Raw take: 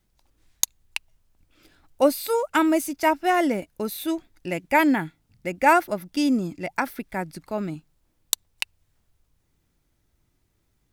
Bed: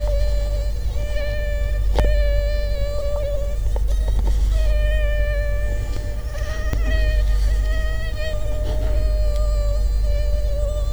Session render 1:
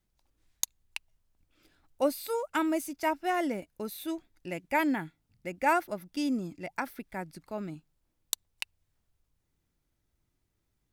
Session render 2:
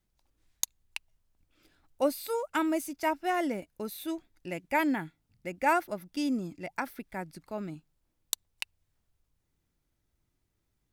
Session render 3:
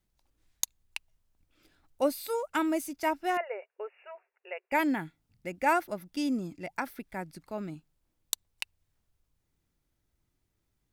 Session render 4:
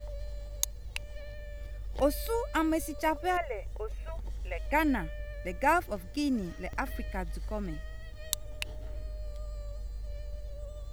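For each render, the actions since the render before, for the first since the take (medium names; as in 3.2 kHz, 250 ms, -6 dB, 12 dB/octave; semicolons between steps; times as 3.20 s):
trim -8.5 dB
no audible change
3.37–4.72 s: brick-wall FIR band-pass 380–2900 Hz
add bed -20 dB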